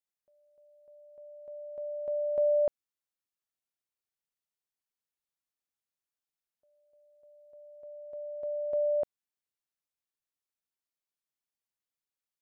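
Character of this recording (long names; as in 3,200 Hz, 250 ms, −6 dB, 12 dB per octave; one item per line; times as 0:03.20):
background noise floor −93 dBFS
spectral slope −4.0 dB per octave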